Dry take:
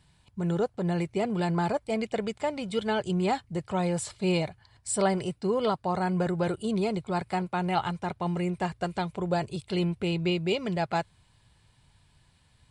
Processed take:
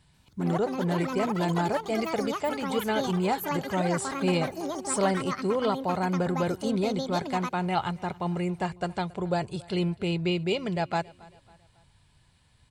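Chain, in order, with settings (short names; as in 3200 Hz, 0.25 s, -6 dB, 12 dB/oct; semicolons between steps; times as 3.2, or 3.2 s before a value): echoes that change speed 0.139 s, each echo +7 st, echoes 2, each echo -6 dB; on a send: feedback echo 0.275 s, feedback 45%, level -23 dB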